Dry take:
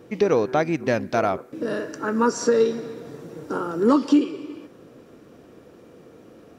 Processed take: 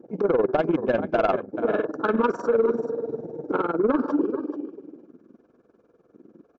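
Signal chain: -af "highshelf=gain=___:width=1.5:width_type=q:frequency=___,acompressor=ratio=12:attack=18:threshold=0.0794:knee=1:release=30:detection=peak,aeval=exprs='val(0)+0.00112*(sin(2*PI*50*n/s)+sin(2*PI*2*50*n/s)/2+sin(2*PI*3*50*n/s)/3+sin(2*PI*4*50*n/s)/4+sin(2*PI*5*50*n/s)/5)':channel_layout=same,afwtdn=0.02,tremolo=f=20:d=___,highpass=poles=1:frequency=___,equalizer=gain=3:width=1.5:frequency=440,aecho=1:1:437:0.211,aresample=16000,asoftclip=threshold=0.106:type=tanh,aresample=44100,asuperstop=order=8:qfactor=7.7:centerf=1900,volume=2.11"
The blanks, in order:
-8, 2100, 0.857, 190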